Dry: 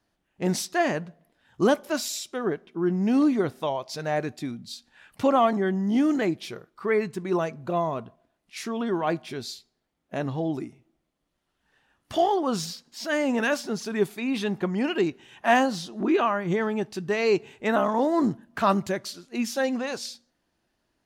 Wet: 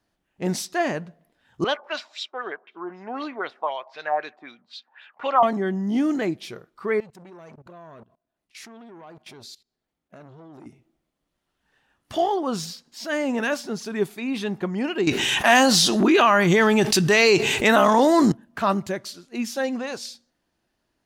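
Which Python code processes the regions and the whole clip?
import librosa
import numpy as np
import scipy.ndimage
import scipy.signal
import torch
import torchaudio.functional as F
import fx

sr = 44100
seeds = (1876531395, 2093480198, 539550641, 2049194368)

y = fx.chain(x, sr, fx.highpass(hz=660.0, slope=12),
    fx.filter_lfo_lowpass(shape='sine', hz=3.9, low_hz=840.0, high_hz=3900.0, q=3.2), at=(1.64, 5.43))
y = fx.chain(y, sr, fx.level_steps(step_db=21),
    fx.transformer_sat(knee_hz=910.0), at=(7.0, 10.66))
y = fx.chain(y, sr, fx.high_shelf(hz=2000.0, db=12.0),
    fx.env_flatten(amount_pct=70), at=(15.07, 18.32))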